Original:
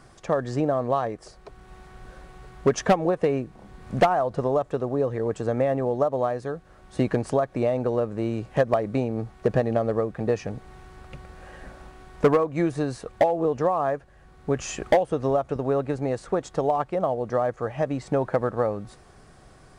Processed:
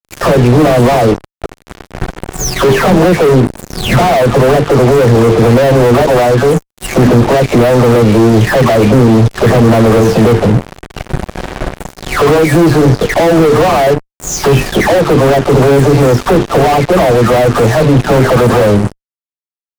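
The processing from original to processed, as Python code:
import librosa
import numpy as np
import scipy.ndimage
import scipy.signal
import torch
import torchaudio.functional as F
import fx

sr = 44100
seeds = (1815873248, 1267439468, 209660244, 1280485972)

y = fx.spec_delay(x, sr, highs='early', ms=441)
y = fx.hum_notches(y, sr, base_hz=50, count=9)
y = fx.fuzz(y, sr, gain_db=45.0, gate_db=-41.0)
y = fx.tilt_shelf(y, sr, db=5.0, hz=760.0)
y = F.gain(torch.from_numpy(y), 5.5).numpy()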